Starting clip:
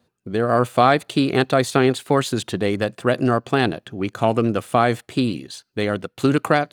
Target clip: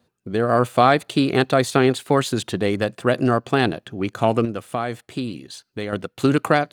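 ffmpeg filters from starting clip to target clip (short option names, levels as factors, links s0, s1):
-filter_complex "[0:a]asettb=1/sr,asplit=3[s0][s1][s2];[s0]atrim=end=4.454[s3];[s1]atrim=start=4.45:end=5.93,asetpts=PTS-STARTPTS,afade=t=in:d=0.004:c=qsin,afade=t=out:st=1.476:d=0.004:c=qsin,acompressor=threshold=0.0178:ratio=1.5[s4];[s2]atrim=start=5.926[s5];[s3][s4]acrossfade=d=0.004:c1=hsin:c2=qsin[s6];[s6][s5]acrossfade=d=0.004:c1=qsin:c2=hsin"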